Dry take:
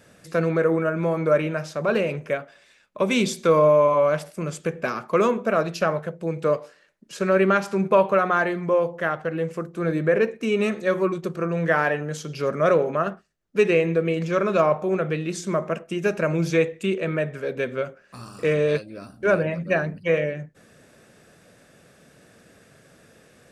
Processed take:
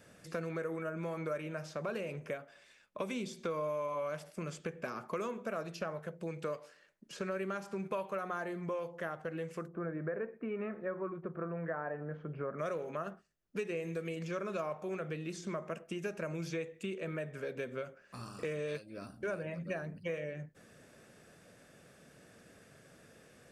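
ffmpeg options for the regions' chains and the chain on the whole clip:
-filter_complex "[0:a]asettb=1/sr,asplit=3[a][b][c];[a]atrim=end=9.684[d];[b]atrim=start=9.68:end=12.59,asetpts=PTS-STARTPTS,afade=t=in:d=0.004:c=qsin,afade=t=out:st=2.906:d=0.004:c=qsin,lowpass=f=1.6k:w=0.5412,lowpass=f=1.6k:w=1.3066,equalizer=f=660:t=o:w=0.3:g=3[e];[c]atrim=start=12.586[f];[d][e]acrossfade=d=0.004:c1=hsin:c2=qsin[g];[g][f]acrossfade=d=0.004:c1=qsin:c2=hsin,asettb=1/sr,asplit=3[h][i][j];[h]atrim=end=13.714[k];[i]atrim=start=13.71:end=14.16,asetpts=PTS-STARTPTS,afade=t=in:d=0.004:c=qsin,afade=t=out:st=0.446:d=0.004:c=qsin,bass=f=250:g=1,treble=f=4k:g=8,acrossover=split=3200[l][m];[m]acompressor=threshold=-41dB:ratio=4:attack=1:release=60[n];[l][n]amix=inputs=2:normalize=0[o];[j]atrim=start=14.156[p];[k][o]acrossfade=d=0.004:c1=hsin:c2=qsin[q];[q][p]acrossfade=d=0.004:c1=qsin:c2=hsin,bandreject=f=3.9k:w=25,acrossover=split=1300|6200[r][s][t];[r]acompressor=threshold=-32dB:ratio=4[u];[s]acompressor=threshold=-42dB:ratio=4[v];[t]acompressor=threshold=-55dB:ratio=4[w];[u][v][w]amix=inputs=3:normalize=0,volume=-6dB"

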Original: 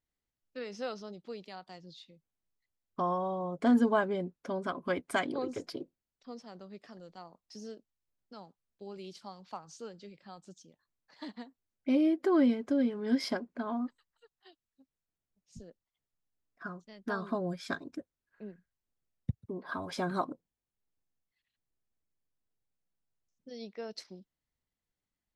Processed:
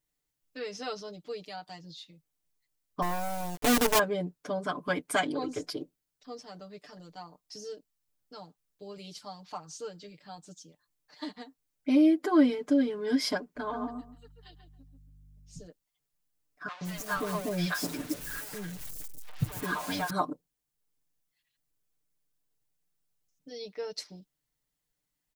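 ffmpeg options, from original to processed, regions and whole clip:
-filter_complex "[0:a]asettb=1/sr,asplit=3[a][b][c];[a]atrim=end=3.024[d];[b]atrim=start=3.02:end=3.99,asetpts=PTS-STARTPTS,afade=t=in:d=0.004:c=qsin,afade=t=out:st=0.966:d=0.004:c=qsin,lowpass=1.2k,acrusher=bits=5:dc=4:mix=0:aa=0.000001[e];[c]atrim=start=3.986[f];[d][e]acrossfade=d=0.004:c1=hsin:c2=qsin[g];[g][f]acrossfade=d=0.004:c1=qsin:c2=hsin,asettb=1/sr,asplit=3[h][i][j];[h]atrim=end=13.564[k];[i]atrim=start=13.56:end=15.67,asetpts=PTS-STARTPTS,afade=t=in:d=0.004:c=qsin,afade=t=out:st=2.106:d=0.004:c=qsin,aeval=exprs='val(0)+0.00126*(sin(2*PI*50*n/s)+sin(2*PI*2*50*n/s)/2+sin(2*PI*3*50*n/s)/3+sin(2*PI*4*50*n/s)/4+sin(2*PI*5*50*n/s)/5)':c=same,asplit=2[l][m];[m]adelay=138,lowpass=f=1.5k:p=1,volume=-4dB,asplit=2[n][o];[o]adelay=138,lowpass=f=1.5k:p=1,volume=0.23,asplit=2[p][q];[q]adelay=138,lowpass=f=1.5k:p=1,volume=0.23[r];[l][n][p][r]amix=inputs=4:normalize=0,atrim=end_sample=93051[s];[j]atrim=start=15.666[t];[k][s]acrossfade=d=0.004:c1=hsin:c2=qsin[u];[u][t]acrossfade=d=0.004:c1=qsin:c2=hsin,asettb=1/sr,asplit=3[v][w][x];[v]atrim=end=16.684[y];[w]atrim=start=16.68:end=20.1,asetpts=PTS-STARTPTS,afade=t=in:d=0.004:c=qsin,afade=t=out:st=3.416:d=0.004:c=qsin,aeval=exprs='val(0)+0.5*0.0126*sgn(val(0))':c=same,acrossover=split=640|4600[z][aa][ab];[z]adelay=130[ac];[ab]adelay=170[ad];[ac][aa][ad]amix=inputs=3:normalize=0,atrim=end_sample=150822[ae];[x]atrim=start=20.096[af];[y][ae]acrossfade=d=0.004:c1=hsin:c2=qsin[ag];[ag][af]acrossfade=d=0.004:c1=qsin:c2=hsin,highshelf=f=5.2k:g=8.5,aecho=1:1:6.7:0.97"

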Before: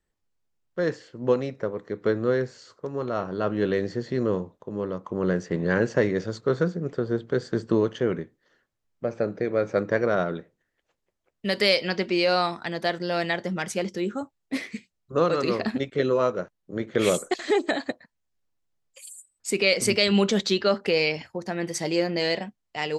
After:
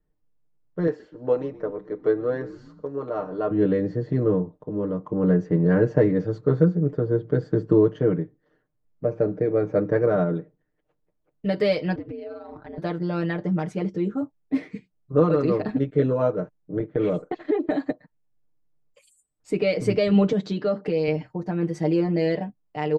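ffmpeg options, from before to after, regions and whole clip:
-filter_complex "[0:a]asettb=1/sr,asplit=3[a][b][c];[a]atrim=end=0.874[d];[b]atrim=start=0.87:end=3.51,asetpts=PTS-STARTPTS,afade=t=in:d=0.004:c=qsin,afade=t=out:st=2.636:d=0.004:c=qsin,bass=f=250:g=-15,treble=f=4k:g=1,asplit=5[e][f][g][h][i];[f]adelay=124,afreqshift=-75,volume=-20dB[j];[g]adelay=248,afreqshift=-150,volume=-26dB[k];[h]adelay=372,afreqshift=-225,volume=-32dB[l];[i]adelay=496,afreqshift=-300,volume=-38.1dB[m];[e][j][k][l][m]amix=inputs=5:normalize=0,atrim=end_sample=116424[n];[c]atrim=start=3.506[o];[d][n]acrossfade=d=0.004:c1=hsin:c2=qsin[p];[p][o]acrossfade=d=0.004:c1=qsin:c2=hsin,asettb=1/sr,asplit=3[q][r][s];[q]atrim=end=11.954[t];[r]atrim=start=11.95:end=12.78,asetpts=PTS-STARTPTS,afade=t=in:d=0.004:c=qsin,afade=t=out:st=0.826:d=0.004:c=qsin,lowpass=f=2k:p=1,acompressor=threshold=-33dB:ratio=12:attack=3.2:release=140:knee=1:detection=peak,aeval=exprs='val(0)*sin(2*PI*100*n/s)':c=same[u];[s]atrim=start=12.776[v];[t][u]acrossfade=d=0.004:c1=hsin:c2=qsin[w];[w][v]acrossfade=d=0.004:c1=qsin:c2=hsin,asettb=1/sr,asplit=3[x][y][z];[x]atrim=end=16.794[aa];[y]atrim=start=16.79:end=17.71,asetpts=PTS-STARTPTS,afade=t=in:d=0.004:c=qsin,afade=t=out:st=0.916:d=0.004:c=qsin,lowpass=3.3k,agate=range=-8dB:threshold=-38dB:ratio=16:release=100:detection=peak,acompressor=threshold=-23dB:ratio=2.5:attack=3.2:release=140:knee=1:detection=peak[ab];[z]atrim=start=17.706[ac];[aa][ab]acrossfade=d=0.004:c1=hsin:c2=qsin[ad];[ad][ac]acrossfade=d=0.004:c1=qsin:c2=hsin,asettb=1/sr,asplit=3[ae][af][ag];[ae]atrim=end=20.324[ah];[af]atrim=start=20.32:end=21.08,asetpts=PTS-STARTPTS,afade=t=in:d=0.004:c=qsin,afade=t=out:st=0.756:d=0.004:c=qsin,highpass=190,bass=f=250:g=7,treble=f=4k:g=3,acompressor=threshold=-25dB:ratio=2:attack=3.2:release=140:knee=1:detection=peak[ai];[ag]atrim=start=21.076[aj];[ah][ai]acrossfade=d=0.004:c1=hsin:c2=qsin[ak];[ak][aj]acrossfade=d=0.004:c1=qsin:c2=hsin,lowpass=f=1.1k:p=1,tiltshelf=f=680:g=4.5,aecho=1:1:6.6:0.87"

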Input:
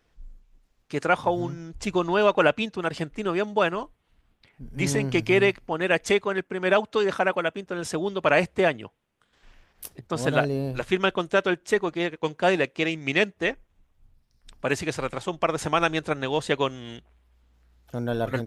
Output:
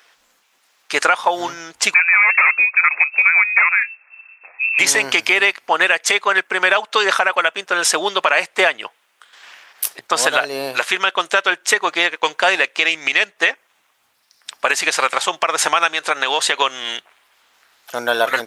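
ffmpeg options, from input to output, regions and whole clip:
-filter_complex "[0:a]asettb=1/sr,asplit=3[a][b][c];[a]atrim=end=1.944[d];[b]atrim=start=1.94:end=4.79,asetpts=PTS-STARTPTS,afade=t=in:d=0.004:c=qsin,afade=t=out:st=2.846:d=0.004:c=qsin,aeval=exprs='0.141*(abs(mod(val(0)/0.141+3,4)-2)-1)':c=same,lowpass=f=2.3k:t=q:w=0.5098,lowpass=f=2.3k:t=q:w=0.6013,lowpass=f=2.3k:t=q:w=0.9,lowpass=f=2.3k:t=q:w=2.563,afreqshift=-2700[e];[c]atrim=start=4.786[f];[d][e]acrossfade=d=0.004:c1=hsin:c2=qsin[g];[g][f]acrossfade=d=0.004:c1=qsin:c2=hsin,asettb=1/sr,asplit=3[h][i][j];[h]atrim=end=15.934[k];[i]atrim=start=15.93:end=16.62,asetpts=PTS-STARTPTS,afade=t=in:d=0.004:c=qsin,afade=t=out:st=0.686:d=0.004:c=qsin,lowshelf=f=150:g=-6,acompressor=threshold=-25dB:ratio=4:attack=3.2:release=140:knee=1:detection=peak[l];[j]atrim=start=16.616[m];[k][l]acrossfade=d=0.004:c1=hsin:c2=qsin[n];[n][m]acrossfade=d=0.004:c1=qsin:c2=hsin,highpass=1k,acompressor=threshold=-31dB:ratio=6,alimiter=level_in=21.5dB:limit=-1dB:release=50:level=0:latency=1,volume=-1dB"

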